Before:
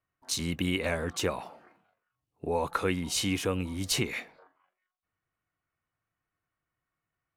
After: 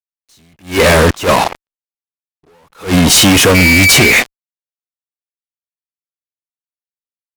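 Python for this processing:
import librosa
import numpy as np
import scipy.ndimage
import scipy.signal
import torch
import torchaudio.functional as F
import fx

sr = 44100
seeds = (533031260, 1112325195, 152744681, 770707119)

y = fx.dmg_tone(x, sr, hz=2300.0, level_db=-33.0, at=(3.54, 4.1), fade=0.02)
y = fx.comb_fb(y, sr, f0_hz=420.0, decay_s=0.25, harmonics='all', damping=0.0, mix_pct=30)
y = fx.fuzz(y, sr, gain_db=45.0, gate_db=-48.0)
y = fx.attack_slew(y, sr, db_per_s=200.0)
y = y * 10.0 ** (7.5 / 20.0)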